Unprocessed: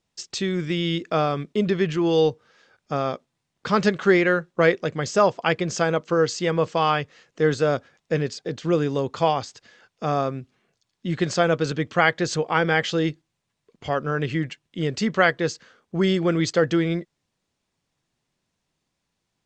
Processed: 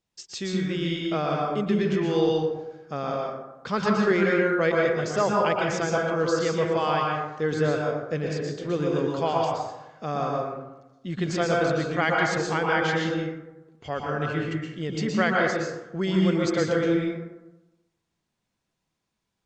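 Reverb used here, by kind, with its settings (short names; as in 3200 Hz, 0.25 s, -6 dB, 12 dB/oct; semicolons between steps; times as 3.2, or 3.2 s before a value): plate-style reverb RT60 1 s, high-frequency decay 0.45×, pre-delay 0.105 s, DRR -2 dB; gain -6.5 dB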